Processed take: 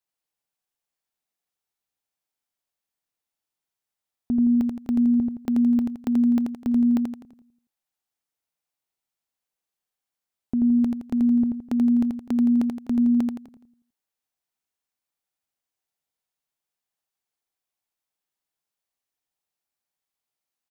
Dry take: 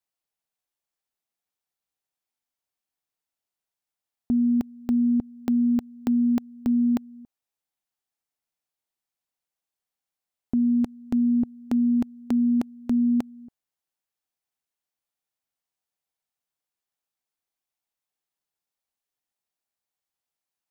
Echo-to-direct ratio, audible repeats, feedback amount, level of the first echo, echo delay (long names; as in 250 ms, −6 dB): −2.5 dB, 5, 43%, −3.5 dB, 84 ms